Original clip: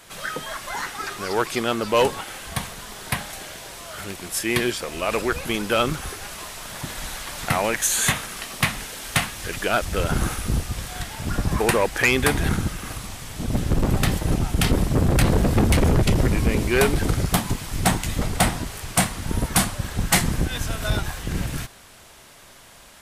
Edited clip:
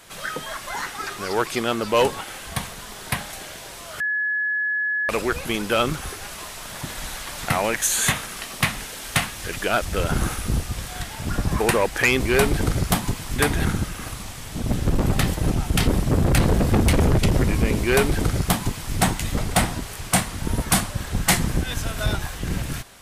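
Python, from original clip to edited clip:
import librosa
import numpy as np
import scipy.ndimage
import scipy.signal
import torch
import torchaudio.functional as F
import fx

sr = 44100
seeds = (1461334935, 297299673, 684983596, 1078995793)

y = fx.edit(x, sr, fx.bleep(start_s=4.0, length_s=1.09, hz=1700.0, db=-20.5),
    fx.duplicate(start_s=16.62, length_s=1.16, to_s=12.2), tone=tone)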